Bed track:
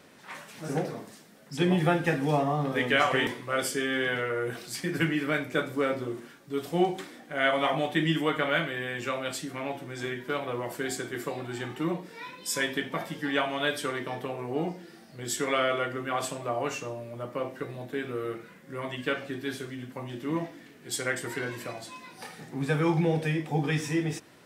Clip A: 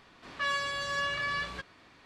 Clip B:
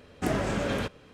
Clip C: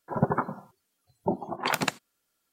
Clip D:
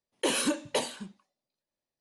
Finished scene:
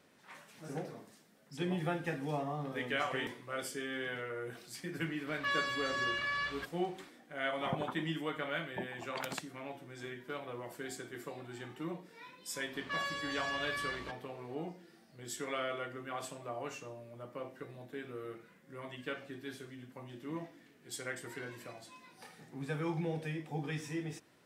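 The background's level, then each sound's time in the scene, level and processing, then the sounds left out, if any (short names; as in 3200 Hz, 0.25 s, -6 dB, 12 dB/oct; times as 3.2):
bed track -11 dB
5.04 add A -7.5 dB + bell 1900 Hz +5 dB 2.9 oct
7.5 add C -14.5 dB
12.5 add A -6.5 dB
not used: B, D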